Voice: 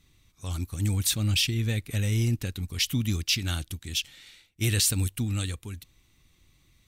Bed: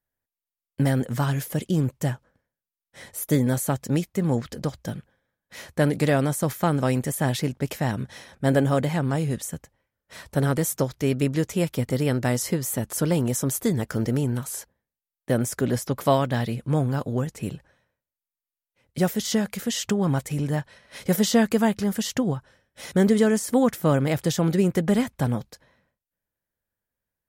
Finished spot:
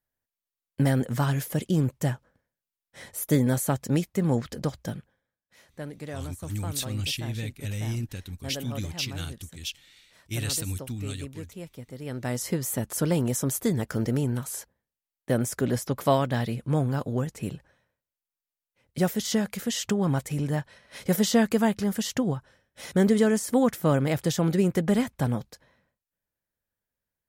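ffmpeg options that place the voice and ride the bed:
-filter_complex "[0:a]adelay=5700,volume=-5.5dB[a];[1:a]volume=13.5dB,afade=t=out:st=4.82:d=0.73:silence=0.16788,afade=t=in:st=11.99:d=0.62:silence=0.188365[b];[a][b]amix=inputs=2:normalize=0"

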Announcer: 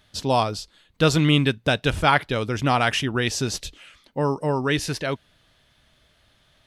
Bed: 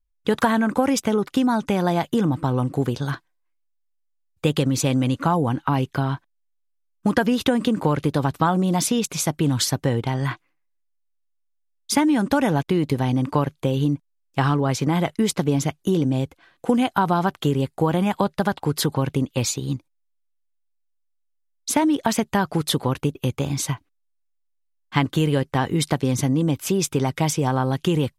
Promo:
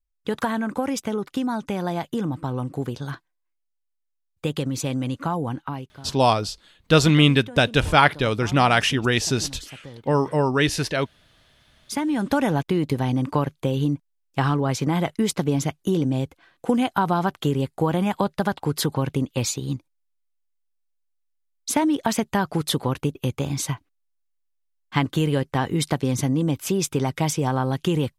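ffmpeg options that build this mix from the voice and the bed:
-filter_complex "[0:a]adelay=5900,volume=2.5dB[a];[1:a]volume=12.5dB,afade=t=out:st=5.54:d=0.38:silence=0.199526,afade=t=in:st=11.68:d=0.67:silence=0.125893[b];[a][b]amix=inputs=2:normalize=0"

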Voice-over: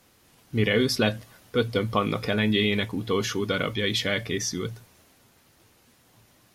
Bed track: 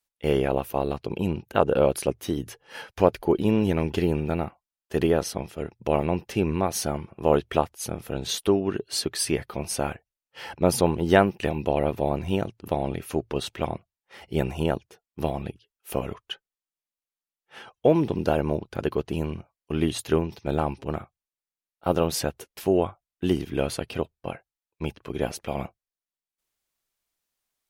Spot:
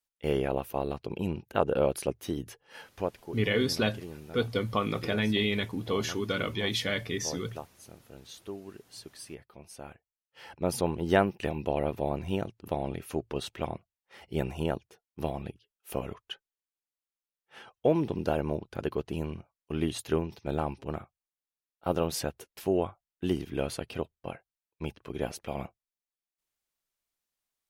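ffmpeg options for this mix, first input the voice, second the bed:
-filter_complex "[0:a]adelay=2800,volume=-4.5dB[a];[1:a]volume=8dB,afade=t=out:st=2.52:d=0.76:silence=0.211349,afade=t=in:st=9.75:d=1.44:silence=0.211349[b];[a][b]amix=inputs=2:normalize=0"

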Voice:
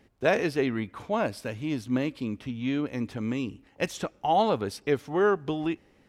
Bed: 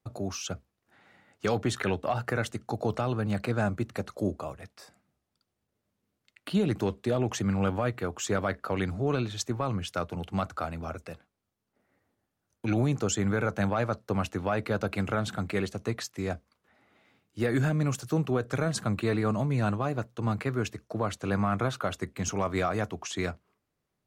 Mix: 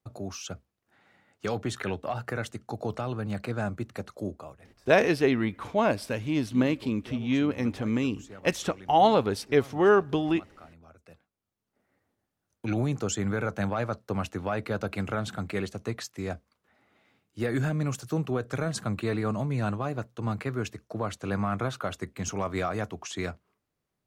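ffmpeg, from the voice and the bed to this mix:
-filter_complex "[0:a]adelay=4650,volume=3dB[a];[1:a]volume=13.5dB,afade=t=out:st=4.08:d=0.86:silence=0.177828,afade=t=in:st=10.96:d=0.77:silence=0.149624[b];[a][b]amix=inputs=2:normalize=0"

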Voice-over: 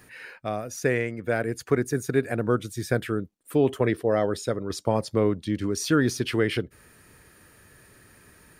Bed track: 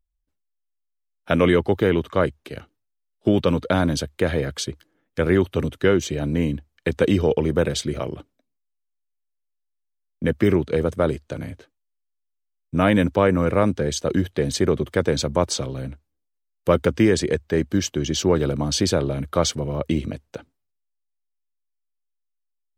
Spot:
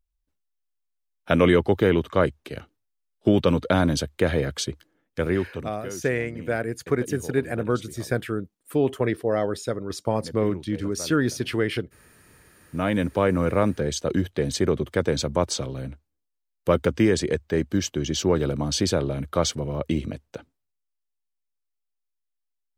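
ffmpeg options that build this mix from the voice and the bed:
-filter_complex "[0:a]adelay=5200,volume=-0.5dB[a];[1:a]volume=15.5dB,afade=t=out:st=4.88:d=0.9:silence=0.125893,afade=t=in:st=12.21:d=1.2:silence=0.158489[b];[a][b]amix=inputs=2:normalize=0"

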